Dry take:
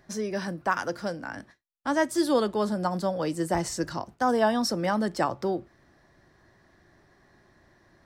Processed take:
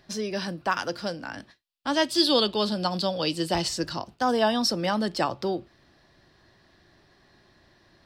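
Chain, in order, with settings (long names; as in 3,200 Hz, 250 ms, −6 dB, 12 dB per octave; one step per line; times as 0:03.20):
flat-topped bell 3,600 Hz +9 dB 1.2 octaves, from 0:01.92 +16 dB, from 0:03.67 +9 dB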